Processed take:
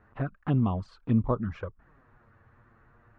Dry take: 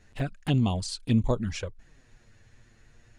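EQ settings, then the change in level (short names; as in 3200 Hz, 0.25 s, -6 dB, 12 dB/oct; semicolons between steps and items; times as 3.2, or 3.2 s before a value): HPF 62 Hz 6 dB/oct; dynamic EQ 930 Hz, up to -6 dB, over -46 dBFS, Q 0.79; synth low-pass 1200 Hz, resonance Q 3.8; 0.0 dB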